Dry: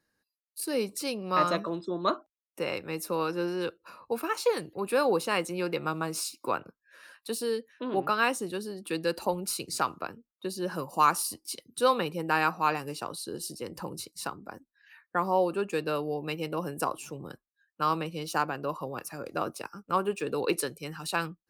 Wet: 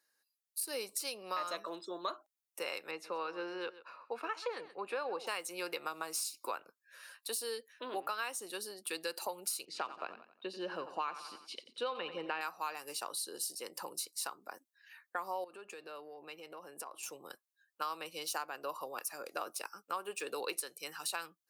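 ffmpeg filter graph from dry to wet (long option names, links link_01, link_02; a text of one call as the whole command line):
ffmpeg -i in.wav -filter_complex "[0:a]asettb=1/sr,asplit=3[link_01][link_02][link_03];[link_01]atrim=end=2.914[link_04];[link_02]atrim=start=2.91:end=5.27,asetpts=PTS-STARTPTS,afade=type=in:duration=0.004:curve=qsin,afade=type=out:start_time=2.356:duration=0.004:curve=qsin,lowpass=2800,aecho=1:1:130:0.141,atrim=end_sample=104076[link_05];[link_03]atrim=start=5.266[link_06];[link_04][link_05]acrossfade=duration=0.004:curve1=hsin:curve2=qsin[link_07];[link_07][link_06]acrossfade=duration=0.004:curve1=qsin:curve2=hsin,asettb=1/sr,asplit=3[link_08][link_09][link_10];[link_08]atrim=end=9.654[link_11];[link_09]atrim=start=9.65:end=12.41,asetpts=PTS-STARTPTS,afade=type=in:duration=0.004:curve=qsin,afade=type=out:start_time=2.756:duration=0.004:curve=qsin,lowpass=frequency=3000:width_type=q:width=2.2,tiltshelf=frequency=760:gain=5.5,aecho=1:1:89|178|267|356:0.211|0.0909|0.0391|0.0168,atrim=end_sample=121716[link_12];[link_10]atrim=start=12.406[link_13];[link_11][link_12]acrossfade=duration=0.004:curve1=hsin:curve2=qsin[link_14];[link_14][link_13]acrossfade=duration=0.004:curve1=qsin:curve2=hsin,asettb=1/sr,asplit=3[link_15][link_16][link_17];[link_15]atrim=end=15.444[link_18];[link_16]atrim=start=15.44:end=17.03,asetpts=PTS-STARTPTS,afade=type=in:duration=0.004:curve=qsin,afade=type=out:start_time=1.586:duration=0.004:curve=qsin,lowpass=frequency=2700:poles=1,acompressor=threshold=-37dB:ratio=10:attack=3.2:release=140:knee=1:detection=peak[link_19];[link_17]atrim=start=17.026[link_20];[link_18][link_19]acrossfade=duration=0.004:curve1=hsin:curve2=qsin[link_21];[link_21][link_20]acrossfade=duration=0.004:curve1=qsin:curve2=hsin,highpass=540,highshelf=frequency=4000:gain=9,acompressor=threshold=-31dB:ratio=6,volume=-3.5dB" out.wav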